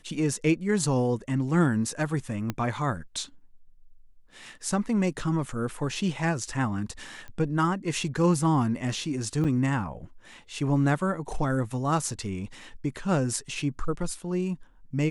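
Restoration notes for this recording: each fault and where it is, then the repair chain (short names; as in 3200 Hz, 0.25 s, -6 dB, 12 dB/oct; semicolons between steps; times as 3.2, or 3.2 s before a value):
2.5 pop -15 dBFS
7.28 pop -29 dBFS
9.44–9.45 gap 6.8 ms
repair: de-click; interpolate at 9.44, 6.8 ms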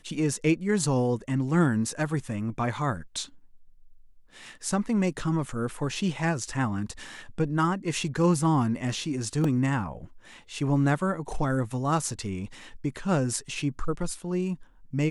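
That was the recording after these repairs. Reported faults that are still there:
2.5 pop
7.28 pop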